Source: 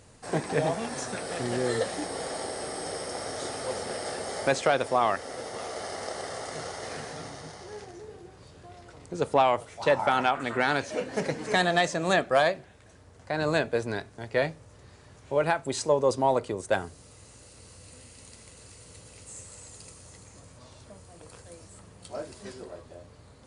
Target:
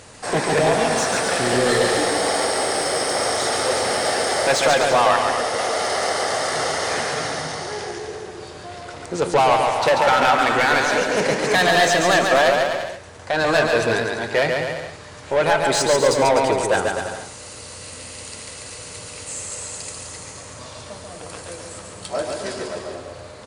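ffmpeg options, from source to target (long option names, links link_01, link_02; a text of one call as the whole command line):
ffmpeg -i in.wav -filter_complex "[0:a]lowshelf=frequency=130:gain=10,asplit=2[link_01][link_02];[link_02]highpass=frequency=720:poles=1,volume=21dB,asoftclip=type=tanh:threshold=-9.5dB[link_03];[link_01][link_03]amix=inputs=2:normalize=0,lowpass=frequency=7400:poles=1,volume=-6dB,asplit=2[link_04][link_05];[link_05]aecho=0:1:140|252|341.6|413.3|470.6:0.631|0.398|0.251|0.158|0.1[link_06];[link_04][link_06]amix=inputs=2:normalize=0" out.wav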